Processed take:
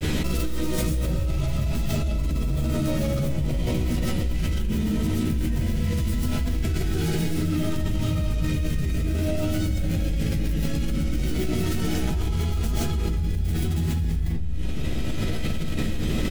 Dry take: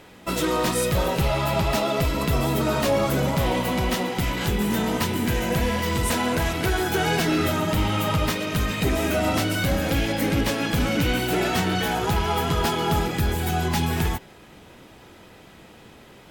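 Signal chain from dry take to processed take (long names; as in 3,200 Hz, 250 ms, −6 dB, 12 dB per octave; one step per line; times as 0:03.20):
stylus tracing distortion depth 0.4 ms
guitar amp tone stack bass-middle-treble 10-0-1
granular cloud 100 ms, spray 32 ms, pitch spread up and down by 0 semitones
in parallel at −4 dB: soft clipping −35 dBFS, distortion −11 dB
on the sum: double-tracking delay 13 ms −6 dB
comb and all-pass reverb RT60 0.74 s, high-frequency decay 0.4×, pre-delay 90 ms, DRR −4 dB
envelope flattener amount 100%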